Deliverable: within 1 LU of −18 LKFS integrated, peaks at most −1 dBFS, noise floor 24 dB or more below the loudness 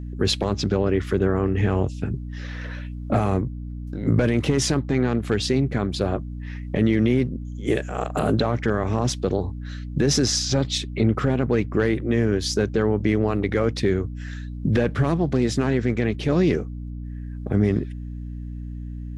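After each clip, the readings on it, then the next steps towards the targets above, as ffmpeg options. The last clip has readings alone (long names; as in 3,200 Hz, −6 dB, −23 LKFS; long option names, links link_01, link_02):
mains hum 60 Hz; hum harmonics up to 300 Hz; level of the hum −30 dBFS; integrated loudness −23.0 LKFS; sample peak −9.5 dBFS; target loudness −18.0 LKFS
→ -af "bandreject=frequency=60:width_type=h:width=4,bandreject=frequency=120:width_type=h:width=4,bandreject=frequency=180:width_type=h:width=4,bandreject=frequency=240:width_type=h:width=4,bandreject=frequency=300:width_type=h:width=4"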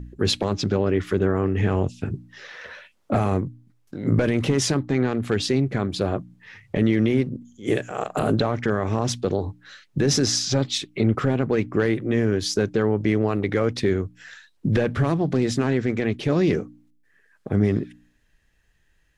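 mains hum none found; integrated loudness −23.5 LKFS; sample peak −9.0 dBFS; target loudness −18.0 LKFS
→ -af "volume=5.5dB"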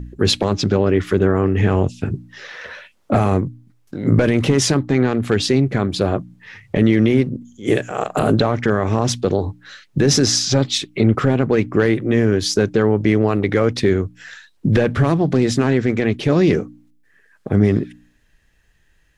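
integrated loudness −18.0 LKFS; sample peak −3.5 dBFS; background noise floor −58 dBFS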